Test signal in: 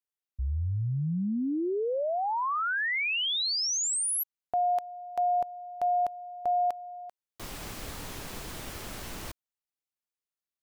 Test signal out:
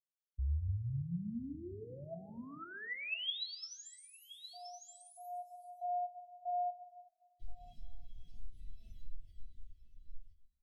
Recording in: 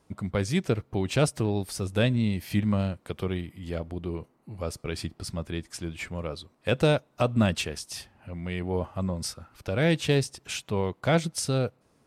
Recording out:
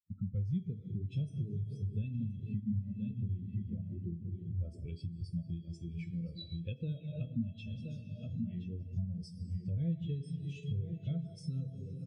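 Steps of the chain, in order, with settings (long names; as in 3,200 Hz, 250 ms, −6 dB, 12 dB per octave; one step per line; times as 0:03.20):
parametric band 900 Hz −15 dB 1.6 octaves
tuned comb filter 660 Hz, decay 0.38 s, mix 80%
on a send: single-tap delay 1,023 ms −7.5 dB
on the sum: dense smooth reverb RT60 3.8 s, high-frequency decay 0.85×, pre-delay 0 ms, DRR 2.5 dB
downward compressor 16 to 1, threshold −49 dBFS
parametric band 3,300 Hz +4.5 dB 1.2 octaves
every bin expanded away from the loudest bin 2.5 to 1
level +10 dB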